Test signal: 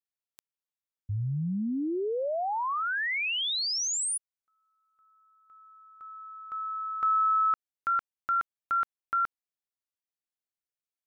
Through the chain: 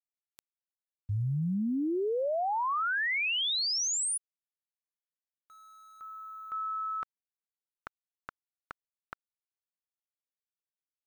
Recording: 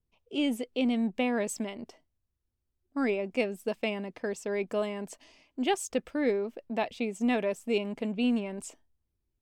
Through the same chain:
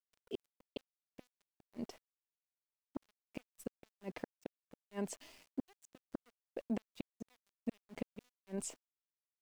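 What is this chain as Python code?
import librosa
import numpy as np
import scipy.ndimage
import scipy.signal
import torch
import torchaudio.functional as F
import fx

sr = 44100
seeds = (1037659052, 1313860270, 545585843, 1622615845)

y = fx.gate_flip(x, sr, shuts_db=-26.0, range_db=-38)
y = fx.high_shelf(y, sr, hz=11000.0, db=-3.0)
y = np.where(np.abs(y) >= 10.0 ** (-58.0 / 20.0), y, 0.0)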